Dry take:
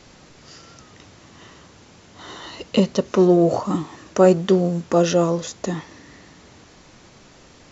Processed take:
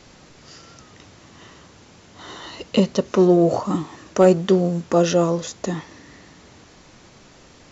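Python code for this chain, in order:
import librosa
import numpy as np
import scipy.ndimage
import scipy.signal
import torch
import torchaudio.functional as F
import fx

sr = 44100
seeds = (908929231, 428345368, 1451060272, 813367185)

y = np.clip(x, -10.0 ** (-3.5 / 20.0), 10.0 ** (-3.5 / 20.0))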